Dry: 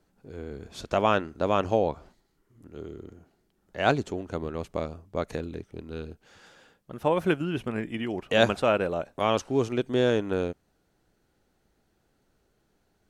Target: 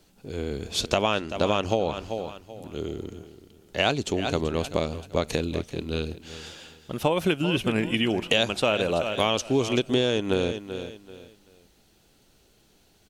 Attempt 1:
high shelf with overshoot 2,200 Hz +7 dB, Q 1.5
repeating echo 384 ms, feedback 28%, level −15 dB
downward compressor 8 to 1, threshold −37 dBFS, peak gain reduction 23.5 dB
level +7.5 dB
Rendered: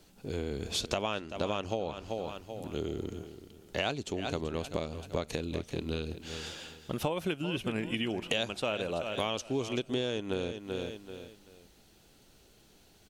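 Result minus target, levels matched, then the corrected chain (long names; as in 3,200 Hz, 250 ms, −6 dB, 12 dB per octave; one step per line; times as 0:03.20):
downward compressor: peak gain reduction +9 dB
high shelf with overshoot 2,200 Hz +7 dB, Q 1.5
repeating echo 384 ms, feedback 28%, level −15 dB
downward compressor 8 to 1, threshold −26.5 dBFS, peak gain reduction 14 dB
level +7.5 dB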